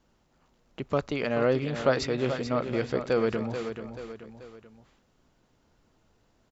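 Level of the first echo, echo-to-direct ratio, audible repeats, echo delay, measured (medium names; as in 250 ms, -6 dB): -9.0 dB, -8.0 dB, 3, 434 ms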